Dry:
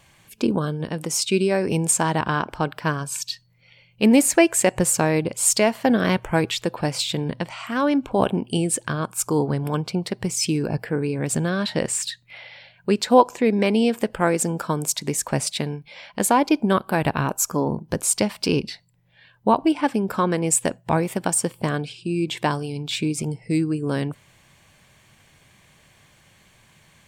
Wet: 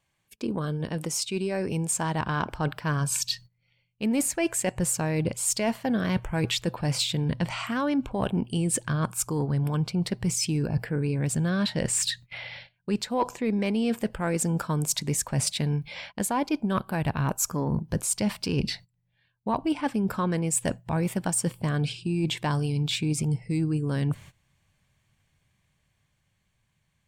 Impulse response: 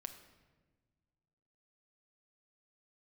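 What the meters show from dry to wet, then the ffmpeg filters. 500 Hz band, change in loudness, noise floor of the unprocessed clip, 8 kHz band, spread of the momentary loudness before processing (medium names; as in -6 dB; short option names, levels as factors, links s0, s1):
-9.0 dB, -5.5 dB, -57 dBFS, -5.0 dB, 10 LU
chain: -af "asubboost=boost=2.5:cutoff=190,agate=range=0.1:threshold=0.00631:ratio=16:detection=peak,areverse,acompressor=threshold=0.0562:ratio=10,areverse,asoftclip=type=tanh:threshold=0.168,dynaudnorm=f=220:g=17:m=1.41"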